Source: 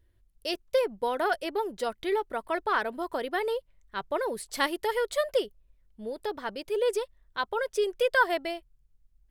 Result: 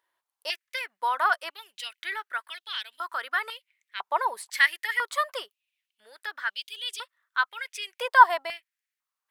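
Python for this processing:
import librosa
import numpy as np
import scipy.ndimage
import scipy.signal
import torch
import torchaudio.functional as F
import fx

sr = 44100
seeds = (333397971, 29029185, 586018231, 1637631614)

y = fx.filter_held_highpass(x, sr, hz=2.0, low_hz=940.0, high_hz=3200.0)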